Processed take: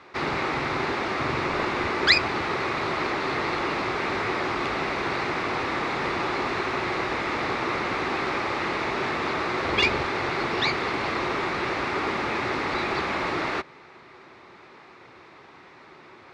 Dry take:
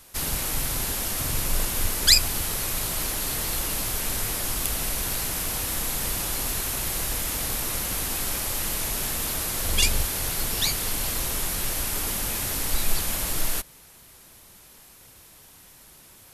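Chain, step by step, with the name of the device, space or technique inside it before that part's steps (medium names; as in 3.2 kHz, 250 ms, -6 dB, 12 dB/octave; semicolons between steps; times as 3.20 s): kitchen radio (cabinet simulation 160–3500 Hz, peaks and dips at 190 Hz -4 dB, 370 Hz +9 dB, 850 Hz +4 dB, 1.2 kHz +7 dB, 2.1 kHz +5 dB, 3.1 kHz -9 dB); trim +6 dB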